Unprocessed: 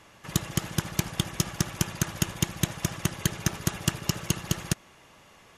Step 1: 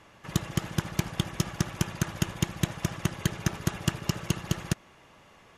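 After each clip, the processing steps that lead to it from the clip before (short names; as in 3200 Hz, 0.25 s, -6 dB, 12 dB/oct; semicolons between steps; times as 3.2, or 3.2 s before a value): high shelf 4300 Hz -8 dB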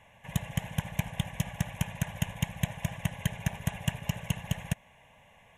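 fixed phaser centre 1300 Hz, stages 6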